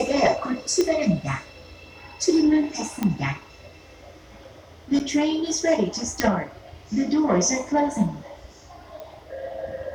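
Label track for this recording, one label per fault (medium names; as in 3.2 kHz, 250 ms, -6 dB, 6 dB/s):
0.810000	0.810000	pop -10 dBFS
3.030000	3.030000	pop -11 dBFS
4.990000	5.000000	dropout 8.7 ms
6.200000	6.200000	pop -5 dBFS
9.000000	9.000000	pop -25 dBFS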